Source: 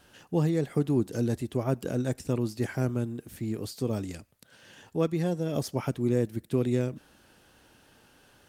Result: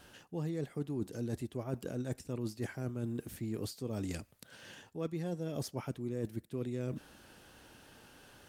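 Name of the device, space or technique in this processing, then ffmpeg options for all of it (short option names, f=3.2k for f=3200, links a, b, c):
compression on the reversed sound: -af "areverse,acompressor=threshold=-36dB:ratio=6,areverse,volume=1.5dB"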